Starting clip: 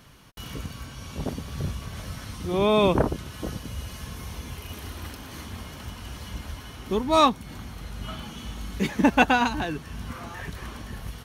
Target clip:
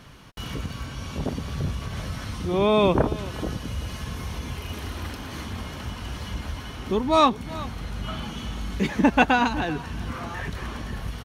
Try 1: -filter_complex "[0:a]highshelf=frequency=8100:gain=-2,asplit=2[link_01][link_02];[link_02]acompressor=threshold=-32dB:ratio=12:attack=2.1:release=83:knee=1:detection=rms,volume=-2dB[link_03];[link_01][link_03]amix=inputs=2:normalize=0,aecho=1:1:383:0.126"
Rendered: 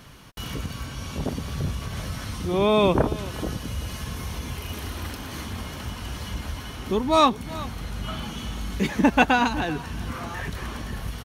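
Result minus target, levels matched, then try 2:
8,000 Hz band +3.5 dB
-filter_complex "[0:a]highshelf=frequency=8100:gain=-10.5,asplit=2[link_01][link_02];[link_02]acompressor=threshold=-32dB:ratio=12:attack=2.1:release=83:knee=1:detection=rms,volume=-2dB[link_03];[link_01][link_03]amix=inputs=2:normalize=0,aecho=1:1:383:0.126"

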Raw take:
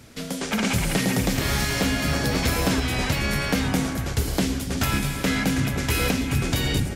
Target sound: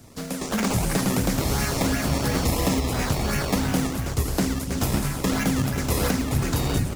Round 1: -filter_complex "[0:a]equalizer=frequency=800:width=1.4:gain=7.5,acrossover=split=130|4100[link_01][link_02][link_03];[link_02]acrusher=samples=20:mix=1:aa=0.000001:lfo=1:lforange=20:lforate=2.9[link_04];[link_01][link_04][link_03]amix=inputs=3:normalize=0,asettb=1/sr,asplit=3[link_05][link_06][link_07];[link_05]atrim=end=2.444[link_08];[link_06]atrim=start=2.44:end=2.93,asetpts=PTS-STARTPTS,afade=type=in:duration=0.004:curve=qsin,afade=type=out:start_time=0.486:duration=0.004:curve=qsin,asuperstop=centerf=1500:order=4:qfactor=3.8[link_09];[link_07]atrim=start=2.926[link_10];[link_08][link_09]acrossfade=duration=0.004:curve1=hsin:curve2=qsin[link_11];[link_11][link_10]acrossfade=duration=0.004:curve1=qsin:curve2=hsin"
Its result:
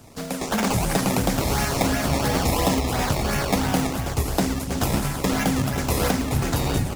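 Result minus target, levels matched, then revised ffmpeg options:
1,000 Hz band +3.5 dB
-filter_complex "[0:a]acrossover=split=130|4100[link_01][link_02][link_03];[link_02]acrusher=samples=20:mix=1:aa=0.000001:lfo=1:lforange=20:lforate=2.9[link_04];[link_01][link_04][link_03]amix=inputs=3:normalize=0,asettb=1/sr,asplit=3[link_05][link_06][link_07];[link_05]atrim=end=2.444[link_08];[link_06]atrim=start=2.44:end=2.93,asetpts=PTS-STARTPTS,afade=type=in:duration=0.004:curve=qsin,afade=type=out:start_time=0.486:duration=0.004:curve=qsin,asuperstop=centerf=1500:order=4:qfactor=3.8[link_09];[link_07]atrim=start=2.926[link_10];[link_08][link_09]acrossfade=duration=0.004:curve1=hsin:curve2=qsin[link_11];[link_11][link_10]acrossfade=duration=0.004:curve1=qsin:curve2=hsin"

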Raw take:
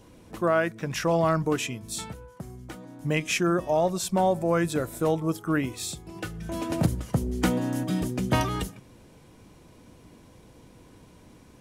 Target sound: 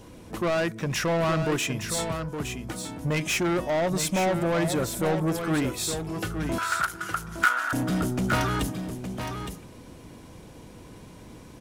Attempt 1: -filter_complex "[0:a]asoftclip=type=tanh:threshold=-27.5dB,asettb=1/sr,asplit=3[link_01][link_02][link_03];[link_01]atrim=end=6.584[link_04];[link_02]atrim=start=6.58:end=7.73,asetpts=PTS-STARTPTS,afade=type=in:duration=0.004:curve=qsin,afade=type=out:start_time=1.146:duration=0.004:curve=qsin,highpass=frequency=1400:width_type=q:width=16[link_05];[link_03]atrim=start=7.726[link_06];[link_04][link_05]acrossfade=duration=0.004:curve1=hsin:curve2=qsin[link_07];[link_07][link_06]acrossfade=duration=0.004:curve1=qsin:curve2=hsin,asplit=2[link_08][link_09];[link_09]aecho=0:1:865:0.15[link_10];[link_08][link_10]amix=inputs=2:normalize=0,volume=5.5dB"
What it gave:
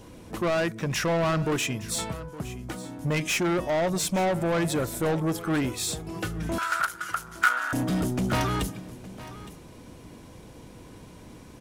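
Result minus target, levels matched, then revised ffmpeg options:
echo-to-direct −9 dB
-filter_complex "[0:a]asoftclip=type=tanh:threshold=-27.5dB,asettb=1/sr,asplit=3[link_01][link_02][link_03];[link_01]atrim=end=6.584[link_04];[link_02]atrim=start=6.58:end=7.73,asetpts=PTS-STARTPTS,afade=type=in:duration=0.004:curve=qsin,afade=type=out:start_time=1.146:duration=0.004:curve=qsin,highpass=frequency=1400:width_type=q:width=16[link_05];[link_03]atrim=start=7.726[link_06];[link_04][link_05]acrossfade=duration=0.004:curve1=hsin:curve2=qsin[link_07];[link_07][link_06]acrossfade=duration=0.004:curve1=qsin:curve2=hsin,asplit=2[link_08][link_09];[link_09]aecho=0:1:865:0.422[link_10];[link_08][link_10]amix=inputs=2:normalize=0,volume=5.5dB"

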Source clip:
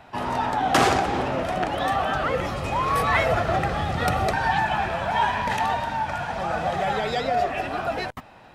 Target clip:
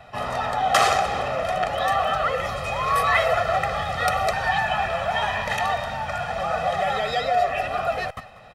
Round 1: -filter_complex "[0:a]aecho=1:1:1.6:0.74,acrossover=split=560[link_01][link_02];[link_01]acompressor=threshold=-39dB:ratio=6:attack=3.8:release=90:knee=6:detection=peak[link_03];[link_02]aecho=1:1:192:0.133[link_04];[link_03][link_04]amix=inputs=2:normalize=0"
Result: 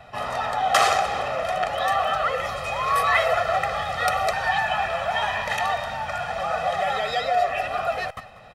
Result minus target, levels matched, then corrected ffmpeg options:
downward compressor: peak gain reduction +5.5 dB
-filter_complex "[0:a]aecho=1:1:1.6:0.74,acrossover=split=560[link_01][link_02];[link_01]acompressor=threshold=-32.5dB:ratio=6:attack=3.8:release=90:knee=6:detection=peak[link_03];[link_02]aecho=1:1:192:0.133[link_04];[link_03][link_04]amix=inputs=2:normalize=0"

